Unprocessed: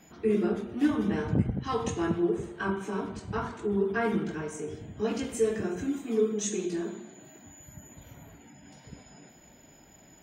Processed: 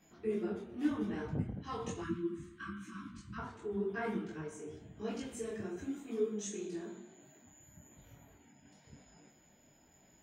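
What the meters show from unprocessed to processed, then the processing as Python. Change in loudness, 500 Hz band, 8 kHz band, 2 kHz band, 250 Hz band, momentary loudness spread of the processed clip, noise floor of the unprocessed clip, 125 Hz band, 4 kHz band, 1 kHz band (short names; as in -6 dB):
-10.0 dB, -10.0 dB, -10.0 dB, -9.5 dB, -9.5 dB, 22 LU, -56 dBFS, -10.0 dB, -9.5 dB, -10.0 dB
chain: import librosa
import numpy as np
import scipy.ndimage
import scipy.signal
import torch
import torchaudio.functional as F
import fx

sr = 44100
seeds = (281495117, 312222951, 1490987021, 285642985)

y = fx.spec_erase(x, sr, start_s=2.02, length_s=1.37, low_hz=350.0, high_hz=1000.0)
y = fx.detune_double(y, sr, cents=34)
y = y * librosa.db_to_amplitude(-6.0)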